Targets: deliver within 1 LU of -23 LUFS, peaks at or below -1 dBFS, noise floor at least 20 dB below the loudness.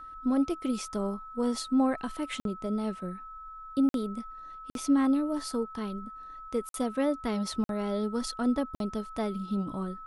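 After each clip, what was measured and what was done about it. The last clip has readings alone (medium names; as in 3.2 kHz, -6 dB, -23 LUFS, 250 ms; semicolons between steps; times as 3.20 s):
dropouts 6; longest dropout 52 ms; steady tone 1.3 kHz; tone level -42 dBFS; loudness -31.0 LUFS; peak level -16.0 dBFS; loudness target -23.0 LUFS
-> interpolate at 2.40/3.89/4.70/6.69/7.64/8.75 s, 52 ms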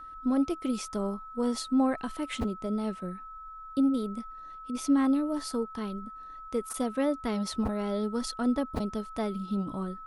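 dropouts 0; steady tone 1.3 kHz; tone level -42 dBFS
-> band-stop 1.3 kHz, Q 30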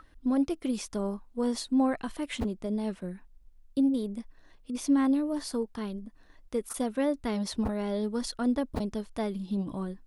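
steady tone not found; loudness -31.0 LUFS; peak level -16.5 dBFS; loudness target -23.0 LUFS
-> trim +8 dB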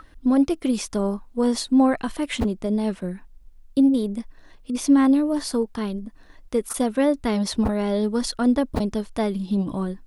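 loudness -23.0 LUFS; peak level -8.5 dBFS; noise floor -49 dBFS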